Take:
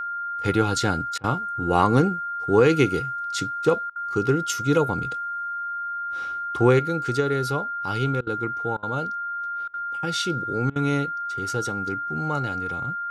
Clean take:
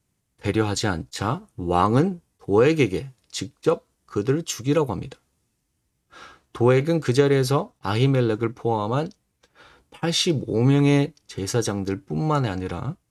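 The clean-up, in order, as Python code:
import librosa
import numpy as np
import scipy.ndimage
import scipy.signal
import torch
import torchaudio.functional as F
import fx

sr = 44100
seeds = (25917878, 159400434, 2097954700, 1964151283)

y = fx.notch(x, sr, hz=1400.0, q=30.0)
y = fx.fix_interpolate(y, sr, at_s=(1.18, 3.9, 8.21, 8.77, 9.68, 10.7), length_ms=57.0)
y = fx.fix_level(y, sr, at_s=6.79, step_db=6.0)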